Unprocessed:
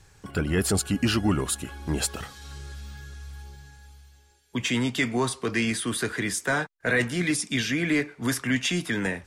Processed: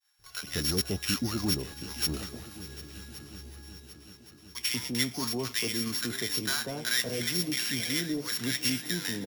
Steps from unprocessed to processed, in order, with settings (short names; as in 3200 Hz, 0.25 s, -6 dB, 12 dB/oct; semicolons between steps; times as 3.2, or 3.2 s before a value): sample sorter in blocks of 8 samples; high shelf 2300 Hz +7.5 dB; bands offset in time highs, lows 0.19 s, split 840 Hz; expander -47 dBFS; on a send: multi-head echo 0.373 s, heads second and third, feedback 60%, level -17 dB; on the sum: gain -7.5 dB